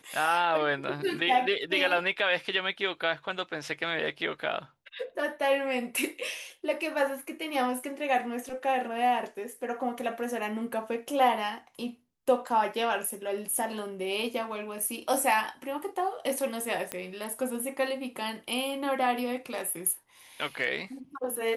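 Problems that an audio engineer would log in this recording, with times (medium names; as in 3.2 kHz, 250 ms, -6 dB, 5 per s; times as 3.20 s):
16.92 s: pop -16 dBFS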